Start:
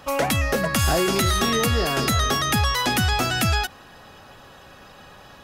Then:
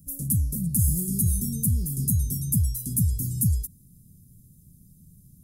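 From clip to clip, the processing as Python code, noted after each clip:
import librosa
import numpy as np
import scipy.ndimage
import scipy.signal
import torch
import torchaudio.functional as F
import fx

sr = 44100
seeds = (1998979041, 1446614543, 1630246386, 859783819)

y = scipy.signal.sosfilt(scipy.signal.ellip(3, 1.0, 70, [170.0, 9700.0], 'bandstop', fs=sr, output='sos'), x)
y = fx.low_shelf(y, sr, hz=110.0, db=-8.0)
y = F.gain(torch.from_numpy(y), 6.0).numpy()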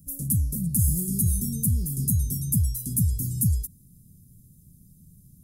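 y = x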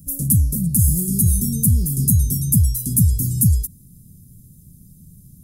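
y = fx.rider(x, sr, range_db=10, speed_s=0.5)
y = F.gain(torch.from_numpy(y), 7.5).numpy()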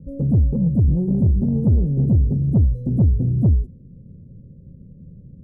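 y = fx.lowpass_res(x, sr, hz=520.0, q=5.5)
y = 10.0 ** (-13.0 / 20.0) * np.tanh(y / 10.0 ** (-13.0 / 20.0))
y = F.gain(torch.from_numpy(y), 3.0).numpy()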